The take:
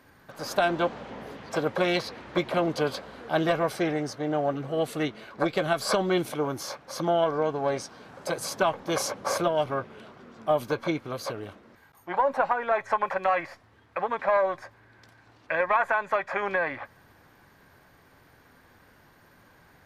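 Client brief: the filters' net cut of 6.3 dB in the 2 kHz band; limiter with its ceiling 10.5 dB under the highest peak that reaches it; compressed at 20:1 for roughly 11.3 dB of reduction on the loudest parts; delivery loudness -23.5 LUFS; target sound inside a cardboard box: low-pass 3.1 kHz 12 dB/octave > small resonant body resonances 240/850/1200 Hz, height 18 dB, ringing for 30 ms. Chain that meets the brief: peaking EQ 2 kHz -8.5 dB; compression 20:1, threshold -31 dBFS; peak limiter -29.5 dBFS; low-pass 3.1 kHz 12 dB/octave; small resonant body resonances 240/850/1200 Hz, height 18 dB, ringing for 30 ms; trim +7.5 dB

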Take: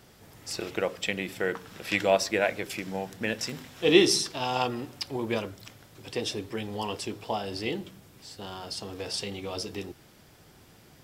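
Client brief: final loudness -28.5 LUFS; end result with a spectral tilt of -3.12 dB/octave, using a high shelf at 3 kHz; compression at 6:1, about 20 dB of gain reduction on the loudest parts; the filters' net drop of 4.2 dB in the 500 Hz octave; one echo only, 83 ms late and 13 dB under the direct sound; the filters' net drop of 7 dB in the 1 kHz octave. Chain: peaking EQ 500 Hz -3.5 dB; peaking EQ 1 kHz -9 dB; treble shelf 3 kHz +4 dB; compression 6:1, threshold -37 dBFS; delay 83 ms -13 dB; trim +12 dB

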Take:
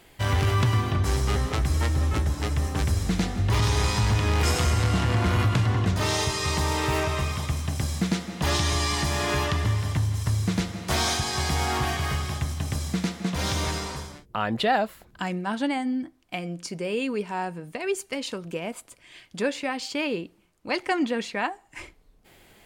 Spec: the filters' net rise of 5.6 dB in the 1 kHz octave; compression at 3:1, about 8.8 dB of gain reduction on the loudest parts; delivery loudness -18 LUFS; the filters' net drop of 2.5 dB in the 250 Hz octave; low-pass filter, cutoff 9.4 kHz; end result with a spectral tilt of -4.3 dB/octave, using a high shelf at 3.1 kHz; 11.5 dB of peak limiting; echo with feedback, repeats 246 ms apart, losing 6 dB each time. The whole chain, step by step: low-pass 9.4 kHz; peaking EQ 250 Hz -4 dB; peaking EQ 1 kHz +7 dB; treble shelf 3.1 kHz +3.5 dB; compression 3:1, threshold -26 dBFS; peak limiter -24.5 dBFS; feedback delay 246 ms, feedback 50%, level -6 dB; trim +14.5 dB

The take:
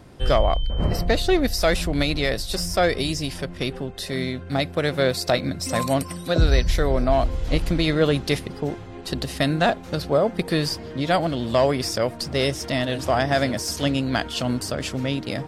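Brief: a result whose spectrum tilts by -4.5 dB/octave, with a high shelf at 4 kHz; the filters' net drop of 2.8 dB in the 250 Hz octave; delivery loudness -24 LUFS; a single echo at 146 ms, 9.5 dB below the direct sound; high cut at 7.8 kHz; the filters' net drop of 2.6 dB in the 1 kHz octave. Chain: low-pass 7.8 kHz; peaking EQ 250 Hz -3.5 dB; peaking EQ 1 kHz -3.5 dB; treble shelf 4 kHz -4.5 dB; delay 146 ms -9.5 dB; trim +0.5 dB

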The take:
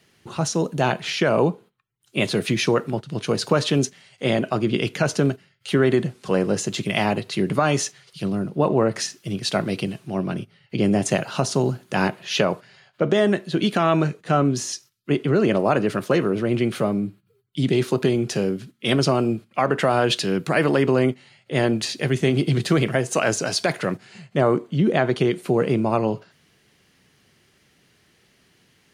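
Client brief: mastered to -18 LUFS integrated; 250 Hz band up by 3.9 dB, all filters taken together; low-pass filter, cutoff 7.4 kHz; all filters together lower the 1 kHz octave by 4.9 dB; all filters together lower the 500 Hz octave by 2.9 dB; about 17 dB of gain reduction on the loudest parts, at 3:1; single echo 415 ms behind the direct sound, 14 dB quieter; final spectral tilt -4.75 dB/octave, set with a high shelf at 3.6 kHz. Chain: low-pass 7.4 kHz; peaking EQ 250 Hz +7 dB; peaking EQ 500 Hz -5.5 dB; peaking EQ 1 kHz -6 dB; treble shelf 3.6 kHz +6.5 dB; compression 3:1, threshold -37 dBFS; delay 415 ms -14 dB; trim +17.5 dB

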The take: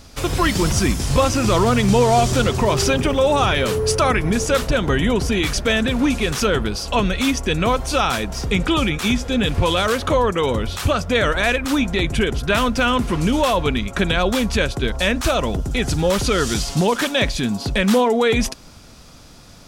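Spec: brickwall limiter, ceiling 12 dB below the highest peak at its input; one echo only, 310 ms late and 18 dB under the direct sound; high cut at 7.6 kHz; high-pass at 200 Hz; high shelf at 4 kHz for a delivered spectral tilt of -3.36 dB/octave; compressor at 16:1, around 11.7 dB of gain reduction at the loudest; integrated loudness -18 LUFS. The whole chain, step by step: high-pass 200 Hz; low-pass 7.6 kHz; treble shelf 4 kHz +5 dB; compression 16:1, threshold -24 dBFS; peak limiter -22.5 dBFS; delay 310 ms -18 dB; trim +13.5 dB

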